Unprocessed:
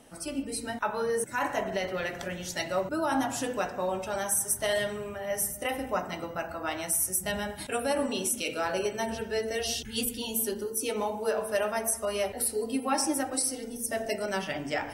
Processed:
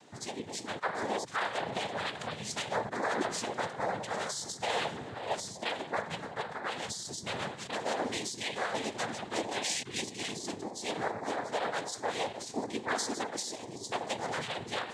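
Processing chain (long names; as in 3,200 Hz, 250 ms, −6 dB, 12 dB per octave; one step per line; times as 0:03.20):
dynamic equaliser 310 Hz, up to −7 dB, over −43 dBFS, Q 0.75
brickwall limiter −21.5 dBFS, peak gain reduction 7.5 dB
cochlear-implant simulation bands 6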